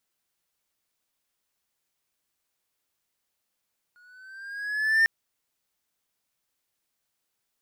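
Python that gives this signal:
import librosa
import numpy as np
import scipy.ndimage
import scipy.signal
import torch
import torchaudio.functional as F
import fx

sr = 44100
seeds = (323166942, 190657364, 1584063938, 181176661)

y = fx.riser_tone(sr, length_s=1.1, level_db=-13.5, wave='triangle', hz=1440.0, rise_st=4.0, swell_db=39.0)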